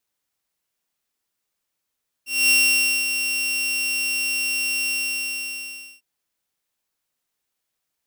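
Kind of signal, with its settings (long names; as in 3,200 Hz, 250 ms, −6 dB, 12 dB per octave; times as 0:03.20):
note with an ADSR envelope saw 2,740 Hz, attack 236 ms, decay 554 ms, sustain −8 dB, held 2.63 s, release 1,120 ms −11 dBFS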